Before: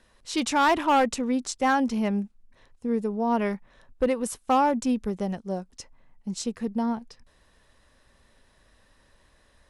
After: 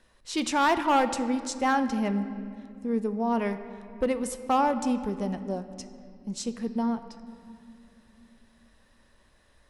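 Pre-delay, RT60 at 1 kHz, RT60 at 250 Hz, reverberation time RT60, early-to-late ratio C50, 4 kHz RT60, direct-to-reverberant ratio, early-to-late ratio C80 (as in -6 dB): 3 ms, 2.3 s, 3.8 s, 2.5 s, 11.5 dB, 1.5 s, 10.0 dB, 12.0 dB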